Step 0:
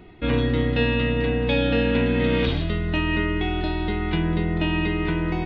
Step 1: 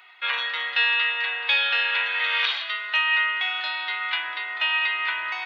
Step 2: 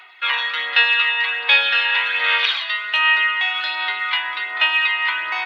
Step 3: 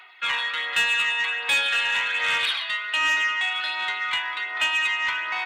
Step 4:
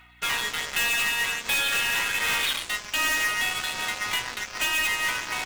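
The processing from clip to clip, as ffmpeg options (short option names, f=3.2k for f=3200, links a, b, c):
-af "highpass=f=1.1k:w=0.5412,highpass=f=1.1k:w=1.3066,volume=7.5dB"
-af "aphaser=in_gain=1:out_gain=1:delay=1.1:decay=0.36:speed=1.3:type=sinusoidal,volume=4.5dB"
-af "asoftclip=type=tanh:threshold=-12.5dB,volume=-3.5dB"
-af "aeval=exprs='0.158*(cos(1*acos(clip(val(0)/0.158,-1,1)))-cos(1*PI/2))+0.00562*(cos(4*acos(clip(val(0)/0.158,-1,1)))-cos(4*PI/2))+0.0316*(cos(5*acos(clip(val(0)/0.158,-1,1)))-cos(5*PI/2))+0.0631*(cos(7*acos(clip(val(0)/0.158,-1,1)))-cos(7*PI/2))':c=same,acrusher=bits=4:mode=log:mix=0:aa=0.000001,aeval=exprs='val(0)+0.002*(sin(2*PI*60*n/s)+sin(2*PI*2*60*n/s)/2+sin(2*PI*3*60*n/s)/3+sin(2*PI*4*60*n/s)/4+sin(2*PI*5*60*n/s)/5)':c=same,volume=-3.5dB"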